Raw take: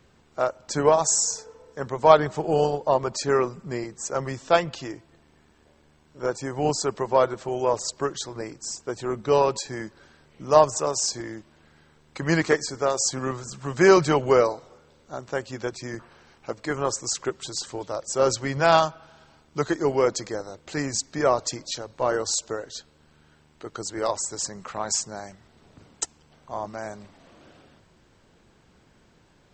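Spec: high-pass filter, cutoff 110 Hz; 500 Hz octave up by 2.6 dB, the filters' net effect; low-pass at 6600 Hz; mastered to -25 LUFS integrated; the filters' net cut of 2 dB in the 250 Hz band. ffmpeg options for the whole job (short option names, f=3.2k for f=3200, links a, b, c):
-af "highpass=110,lowpass=6.6k,equalizer=f=250:t=o:g=-6.5,equalizer=f=500:t=o:g=5,volume=-2dB"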